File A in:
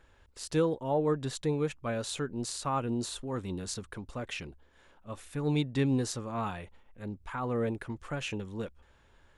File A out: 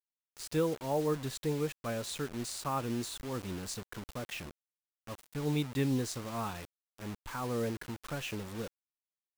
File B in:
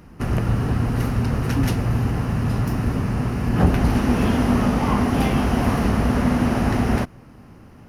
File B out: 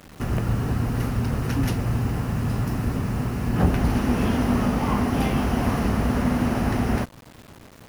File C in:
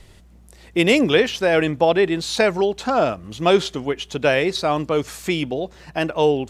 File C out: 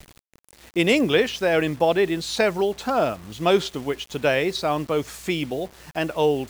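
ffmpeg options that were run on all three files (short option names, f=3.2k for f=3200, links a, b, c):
-af "acrusher=bits=6:mix=0:aa=0.000001,volume=-3dB"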